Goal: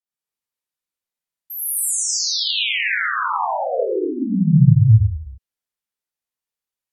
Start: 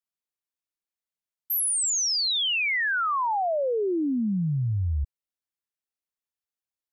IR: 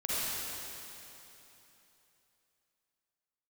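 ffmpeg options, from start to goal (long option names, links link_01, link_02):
-filter_complex "[0:a]asplit=3[link_01][link_02][link_03];[link_01]afade=type=out:start_time=4.29:duration=0.02[link_04];[link_02]asubboost=boost=11.5:cutoff=120,afade=type=in:start_time=4.29:duration=0.02,afade=type=out:start_time=4.75:duration=0.02[link_05];[link_03]afade=type=in:start_time=4.75:duration=0.02[link_06];[link_04][link_05][link_06]amix=inputs=3:normalize=0[link_07];[1:a]atrim=start_sample=2205,afade=type=out:start_time=0.32:duration=0.01,atrim=end_sample=14553,asetrate=36162,aresample=44100[link_08];[link_07][link_08]afir=irnorm=-1:irlink=0,volume=-4dB"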